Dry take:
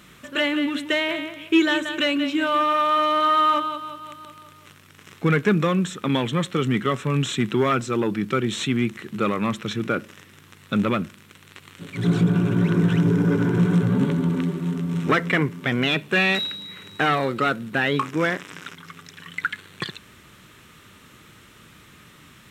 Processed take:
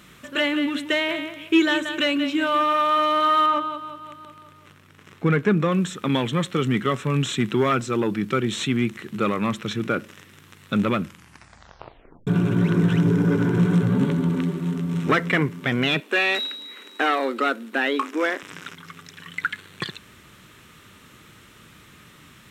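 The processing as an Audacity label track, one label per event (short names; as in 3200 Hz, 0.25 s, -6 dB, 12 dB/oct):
3.460000	5.720000	high shelf 2900 Hz -8.5 dB
11.020000	11.020000	tape stop 1.25 s
16.000000	18.430000	elliptic high-pass 240 Hz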